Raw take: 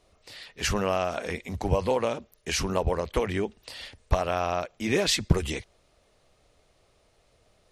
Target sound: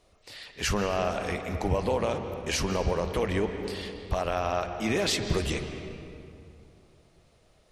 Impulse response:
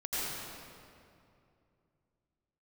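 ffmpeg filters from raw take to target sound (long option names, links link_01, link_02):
-filter_complex "[0:a]alimiter=limit=-17.5dB:level=0:latency=1:release=38,asplit=2[link_01][link_02];[1:a]atrim=start_sample=2205,lowpass=5400,adelay=54[link_03];[link_02][link_03]afir=irnorm=-1:irlink=0,volume=-13dB[link_04];[link_01][link_04]amix=inputs=2:normalize=0"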